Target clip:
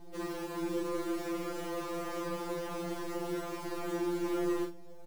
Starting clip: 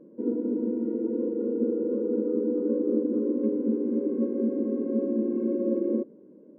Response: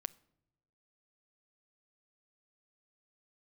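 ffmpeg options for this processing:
-filter_complex "[0:a]highpass=49,equalizer=frequency=680:width_type=o:width=0.31:gain=9,asplit=2[link_01][link_02];[link_02]acompressor=threshold=-33dB:ratio=6,volume=-2.5dB[link_03];[link_01][link_03]amix=inputs=2:normalize=0,atempo=1.3,aresample=16000,asoftclip=type=hard:threshold=-28.5dB,aresample=44100,acrusher=bits=7:dc=4:mix=0:aa=0.000001,aecho=1:1:39|74:0.531|0.15,afftfilt=real='re*2.83*eq(mod(b,8),0)':imag='im*2.83*eq(mod(b,8),0)':win_size=2048:overlap=0.75,volume=-2.5dB"

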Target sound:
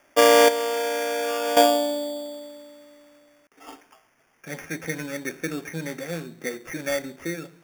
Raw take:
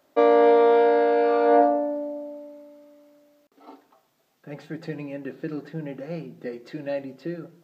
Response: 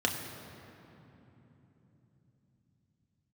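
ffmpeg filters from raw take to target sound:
-filter_complex "[0:a]equalizer=frequency=1900:width=1:gain=13,acrusher=samples=11:mix=1:aa=0.000001,asettb=1/sr,asplit=3[link_01][link_02][link_03];[link_01]atrim=end=0.484[link_04];[link_02]atrim=start=0.48:end=1.57,asetpts=PTS-STARTPTS,afade=type=in:duration=0.004:curve=qsin,afade=type=out:start_time=1.086:duration=0.004:curve=qsin,acompressor=threshold=-23dB:ratio=10[link_05];[link_03]atrim=start=1.566[link_06];[link_04][link_05]acrossfade=duration=0.004:curve1=hsin:curve2=qsin[link_07];[link_07][link_06]acrossfade=duration=0.004:curve1=qsin:curve2=hsin"

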